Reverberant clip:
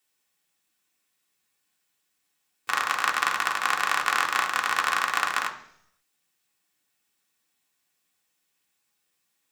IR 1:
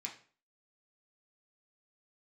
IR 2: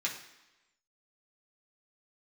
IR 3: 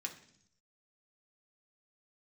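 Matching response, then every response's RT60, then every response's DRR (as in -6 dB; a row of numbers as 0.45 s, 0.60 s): 3; 0.45 s, 1.0 s, 0.65 s; -1.5 dB, -4.0 dB, 1.0 dB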